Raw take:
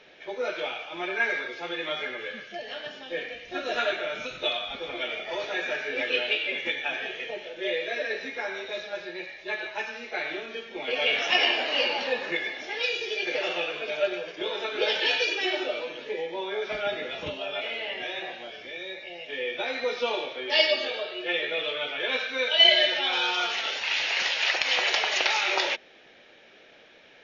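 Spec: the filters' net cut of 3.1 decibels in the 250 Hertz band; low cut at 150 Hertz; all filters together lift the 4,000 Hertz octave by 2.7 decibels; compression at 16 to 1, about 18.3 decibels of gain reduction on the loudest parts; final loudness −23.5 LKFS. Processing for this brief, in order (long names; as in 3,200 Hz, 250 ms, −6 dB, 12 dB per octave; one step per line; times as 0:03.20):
high-pass filter 150 Hz
parametric band 250 Hz −5 dB
parametric band 4,000 Hz +4 dB
downward compressor 16 to 1, threshold −29 dBFS
level +9 dB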